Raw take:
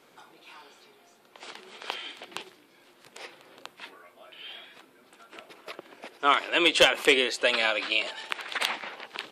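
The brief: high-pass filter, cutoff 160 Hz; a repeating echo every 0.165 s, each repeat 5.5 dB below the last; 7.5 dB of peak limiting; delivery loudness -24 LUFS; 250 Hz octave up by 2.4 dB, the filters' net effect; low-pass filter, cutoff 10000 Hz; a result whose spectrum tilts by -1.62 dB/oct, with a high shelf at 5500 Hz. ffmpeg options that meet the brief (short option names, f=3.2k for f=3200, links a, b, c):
-af "highpass=160,lowpass=10k,equalizer=f=250:t=o:g=4,highshelf=f=5.5k:g=-8,alimiter=limit=-15.5dB:level=0:latency=1,aecho=1:1:165|330|495|660|825|990|1155:0.531|0.281|0.149|0.079|0.0419|0.0222|0.0118,volume=4dB"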